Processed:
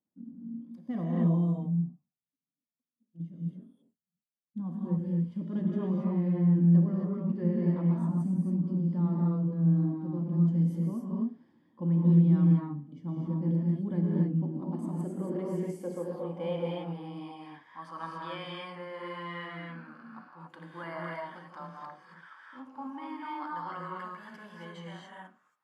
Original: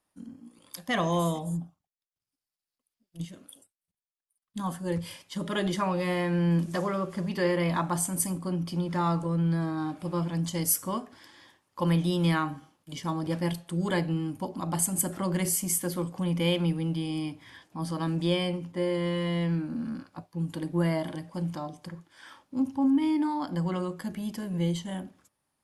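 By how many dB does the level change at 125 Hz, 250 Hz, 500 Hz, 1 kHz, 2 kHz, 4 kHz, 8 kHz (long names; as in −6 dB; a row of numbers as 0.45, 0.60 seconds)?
+2.0 dB, 0.0 dB, −6.5 dB, −7.0 dB, can't be measured, below −10 dB, below −30 dB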